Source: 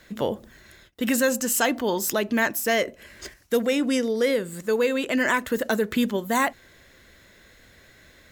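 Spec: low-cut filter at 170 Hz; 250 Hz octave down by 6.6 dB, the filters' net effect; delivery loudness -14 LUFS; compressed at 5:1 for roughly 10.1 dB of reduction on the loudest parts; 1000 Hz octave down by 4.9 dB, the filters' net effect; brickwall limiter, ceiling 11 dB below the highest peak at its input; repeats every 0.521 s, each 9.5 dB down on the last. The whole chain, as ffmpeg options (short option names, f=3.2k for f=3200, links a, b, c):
-af "highpass=170,equalizer=f=250:t=o:g=-6,equalizer=f=1k:t=o:g=-6,acompressor=threshold=-32dB:ratio=5,alimiter=level_in=4dB:limit=-24dB:level=0:latency=1,volume=-4dB,aecho=1:1:521|1042|1563|2084:0.335|0.111|0.0365|0.012,volume=24dB"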